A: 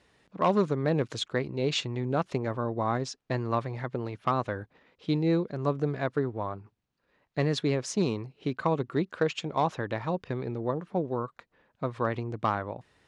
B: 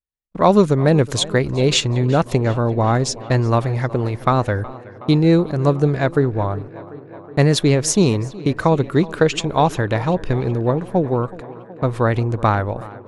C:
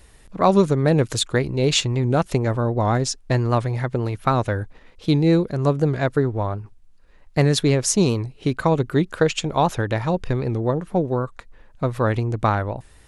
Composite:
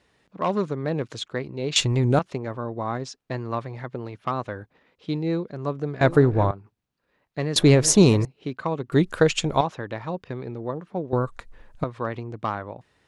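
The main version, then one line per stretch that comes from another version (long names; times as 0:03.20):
A
0:01.76–0:02.19: punch in from C
0:06.01–0:06.51: punch in from B
0:07.56–0:08.25: punch in from B
0:08.92–0:09.61: punch in from C
0:11.13–0:11.84: punch in from C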